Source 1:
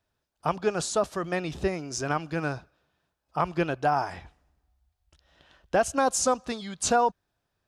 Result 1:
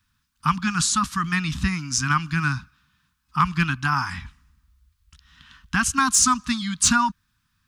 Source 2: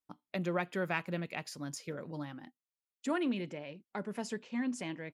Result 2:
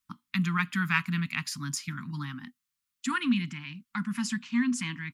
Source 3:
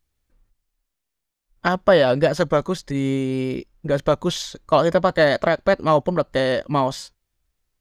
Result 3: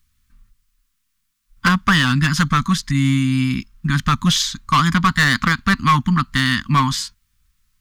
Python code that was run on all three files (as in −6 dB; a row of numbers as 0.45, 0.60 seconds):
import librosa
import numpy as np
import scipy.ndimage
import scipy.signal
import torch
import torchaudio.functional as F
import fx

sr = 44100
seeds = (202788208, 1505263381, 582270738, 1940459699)

y = scipy.signal.sosfilt(scipy.signal.cheby1(3, 1.0, [240.0, 1100.0], 'bandstop', fs=sr, output='sos'), x)
y = np.clip(10.0 ** (19.5 / 20.0) * y, -1.0, 1.0) / 10.0 ** (19.5 / 20.0)
y = librosa.util.normalize(y) * 10.0 ** (-9 / 20.0)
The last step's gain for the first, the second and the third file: +10.5, +10.5, +10.5 decibels